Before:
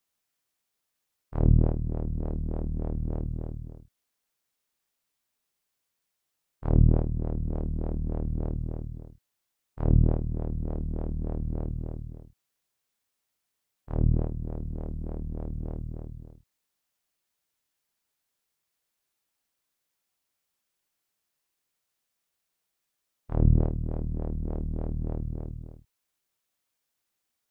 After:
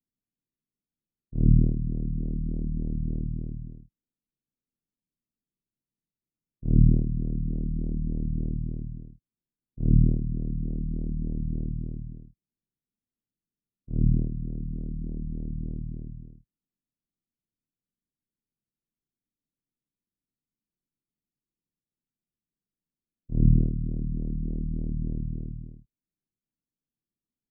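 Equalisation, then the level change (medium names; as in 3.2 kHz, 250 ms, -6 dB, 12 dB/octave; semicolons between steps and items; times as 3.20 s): four-pole ladder low-pass 320 Hz, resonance 20%; peaking EQ 78 Hz -9 dB 0.9 oct; +9.0 dB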